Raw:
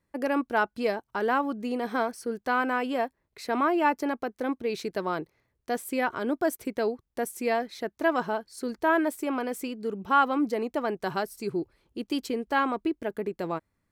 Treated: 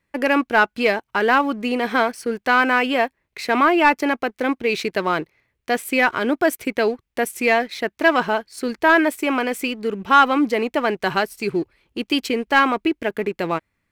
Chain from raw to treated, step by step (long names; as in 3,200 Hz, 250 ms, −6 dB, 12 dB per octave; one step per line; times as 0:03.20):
parametric band 2,400 Hz +10.5 dB 1.2 octaves
leveller curve on the samples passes 1
level +3.5 dB